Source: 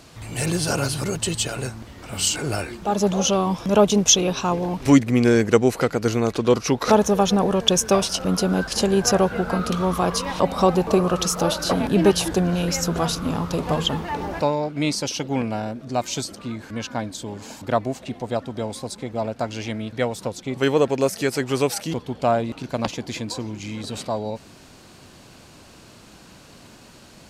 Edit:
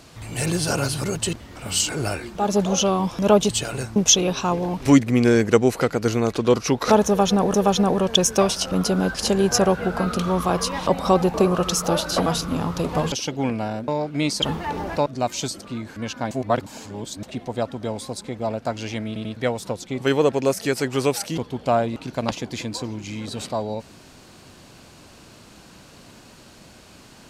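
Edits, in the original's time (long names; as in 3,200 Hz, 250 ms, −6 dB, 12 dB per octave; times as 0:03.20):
0:01.33–0:01.80: move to 0:03.96
0:07.07–0:07.54: repeat, 2 plays
0:11.79–0:13.00: remove
0:13.86–0:14.50: swap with 0:15.04–0:15.80
0:17.05–0:17.97: reverse
0:19.81: stutter 0.09 s, 3 plays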